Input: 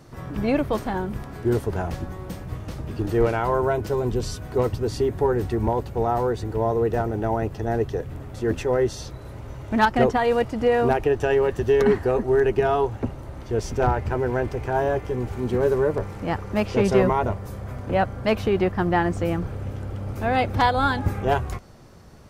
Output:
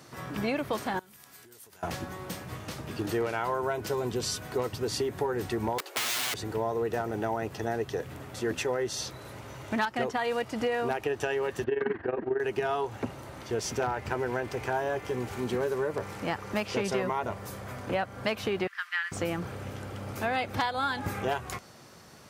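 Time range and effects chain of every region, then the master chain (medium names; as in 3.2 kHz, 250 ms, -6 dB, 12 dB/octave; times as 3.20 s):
0.99–1.83 s: pre-emphasis filter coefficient 0.9 + compression 16:1, threshold -48 dBFS
5.78–6.34 s: steep high-pass 320 Hz 72 dB/octave + band-stop 910 Hz, Q 30 + integer overflow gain 24.5 dB
11.64–12.40 s: low-pass 2.8 kHz 24 dB/octave + AM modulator 22 Hz, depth 70% + small resonant body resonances 320/1600 Hz, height 8 dB, ringing for 25 ms
18.67–19.12 s: steep high-pass 1.4 kHz + treble shelf 4.8 kHz -7 dB
whole clip: high-pass 120 Hz 12 dB/octave; tilt shelf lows -5 dB; compression 6:1, threshold -26 dBFS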